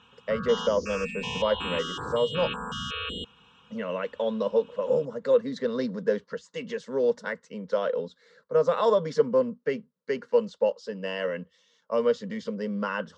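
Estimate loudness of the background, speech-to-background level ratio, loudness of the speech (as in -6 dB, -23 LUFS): -33.5 LUFS, 5.5 dB, -28.0 LUFS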